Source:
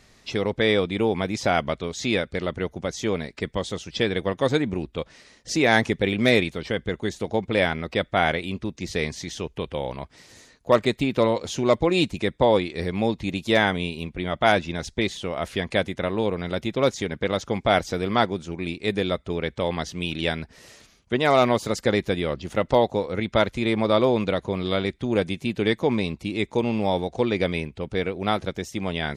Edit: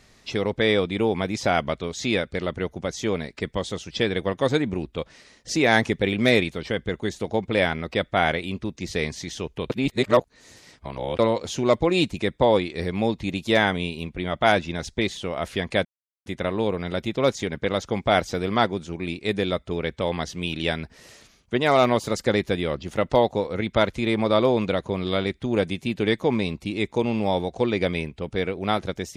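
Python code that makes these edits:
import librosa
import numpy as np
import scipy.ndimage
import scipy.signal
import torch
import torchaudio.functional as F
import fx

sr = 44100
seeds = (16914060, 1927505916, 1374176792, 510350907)

y = fx.edit(x, sr, fx.reverse_span(start_s=9.7, length_s=1.49),
    fx.insert_silence(at_s=15.85, length_s=0.41), tone=tone)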